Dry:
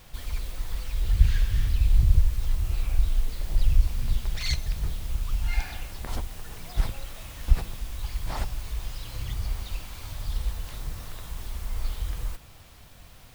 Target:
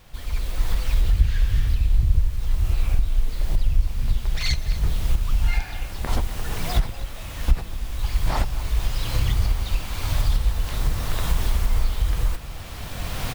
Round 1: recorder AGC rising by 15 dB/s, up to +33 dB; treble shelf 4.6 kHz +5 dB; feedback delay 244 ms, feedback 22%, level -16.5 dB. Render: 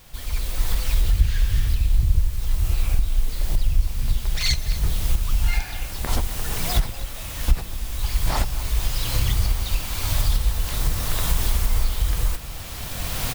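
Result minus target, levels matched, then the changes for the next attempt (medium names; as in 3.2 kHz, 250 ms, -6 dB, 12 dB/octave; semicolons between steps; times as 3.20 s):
8 kHz band +6.0 dB
change: treble shelf 4.6 kHz -4.5 dB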